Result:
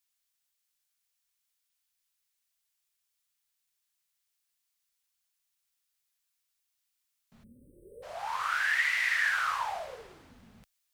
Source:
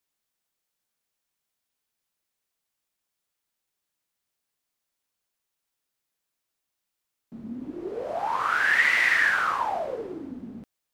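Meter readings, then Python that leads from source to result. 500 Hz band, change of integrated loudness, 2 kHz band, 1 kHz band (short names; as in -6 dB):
-12.5 dB, -6.0 dB, -6.5 dB, -6.5 dB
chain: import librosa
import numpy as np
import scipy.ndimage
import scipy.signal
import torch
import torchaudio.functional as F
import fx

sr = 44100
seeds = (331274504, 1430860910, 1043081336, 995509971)

y = fx.spec_erase(x, sr, start_s=7.44, length_s=0.59, low_hz=600.0, high_hz=8000.0)
y = fx.tone_stack(y, sr, knobs='10-0-10')
y = fx.rider(y, sr, range_db=10, speed_s=0.5)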